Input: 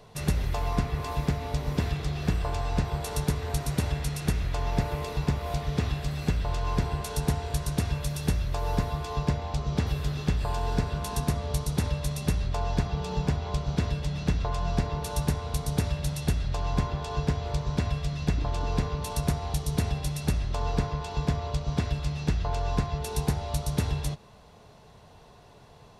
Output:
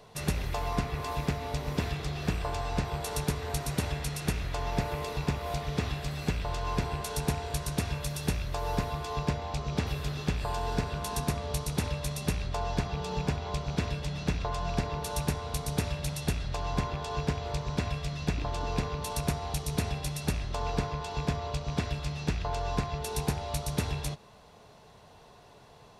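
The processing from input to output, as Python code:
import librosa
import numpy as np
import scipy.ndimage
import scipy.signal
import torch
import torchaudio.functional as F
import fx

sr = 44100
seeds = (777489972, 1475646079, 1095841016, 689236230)

y = fx.rattle_buzz(x, sr, strikes_db=-24.0, level_db=-32.0)
y = fx.low_shelf(y, sr, hz=200.0, db=-6.0)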